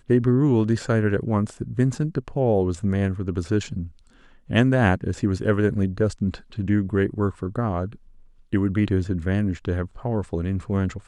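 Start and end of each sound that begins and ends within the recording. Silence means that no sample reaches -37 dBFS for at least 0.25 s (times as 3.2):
4.49–7.95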